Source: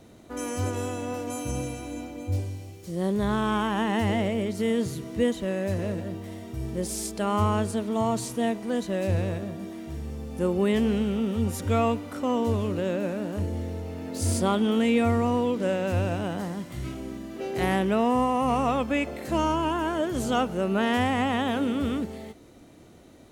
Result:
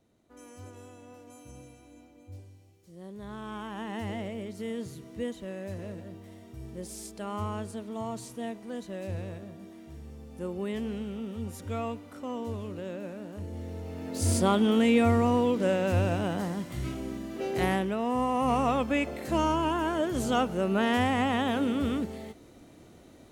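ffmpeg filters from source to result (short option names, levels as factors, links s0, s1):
-af "volume=2.11,afade=t=in:st=3.12:d=0.91:silence=0.398107,afade=t=in:st=13.42:d=0.94:silence=0.316228,afade=t=out:st=17.53:d=0.44:silence=0.398107,afade=t=in:st=17.97:d=0.52:silence=0.473151"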